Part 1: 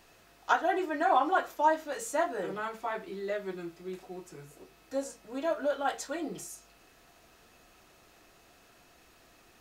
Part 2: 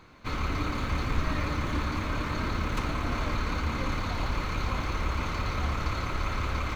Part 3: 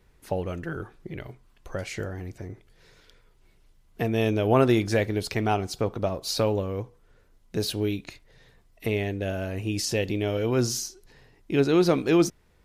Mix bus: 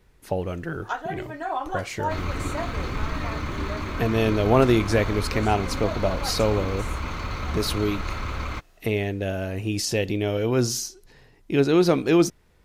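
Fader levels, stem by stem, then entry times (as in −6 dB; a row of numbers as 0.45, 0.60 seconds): −3.5, 0.0, +2.0 decibels; 0.40, 1.85, 0.00 seconds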